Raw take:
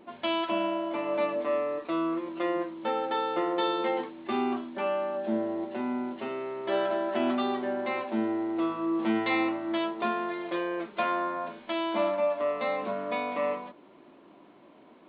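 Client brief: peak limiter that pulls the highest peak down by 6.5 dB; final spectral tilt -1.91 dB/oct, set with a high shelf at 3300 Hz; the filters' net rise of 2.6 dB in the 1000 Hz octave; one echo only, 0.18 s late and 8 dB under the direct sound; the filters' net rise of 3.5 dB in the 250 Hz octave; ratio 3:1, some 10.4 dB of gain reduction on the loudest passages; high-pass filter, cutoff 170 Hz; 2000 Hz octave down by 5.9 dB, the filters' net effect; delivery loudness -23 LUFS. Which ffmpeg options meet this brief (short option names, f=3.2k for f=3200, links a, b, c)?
-af "highpass=170,equalizer=f=250:t=o:g=5.5,equalizer=f=1k:t=o:g=5,equalizer=f=2k:t=o:g=-6.5,highshelf=f=3.3k:g=-7,acompressor=threshold=-35dB:ratio=3,alimiter=level_in=4.5dB:limit=-24dB:level=0:latency=1,volume=-4.5dB,aecho=1:1:180:0.398,volume=13.5dB"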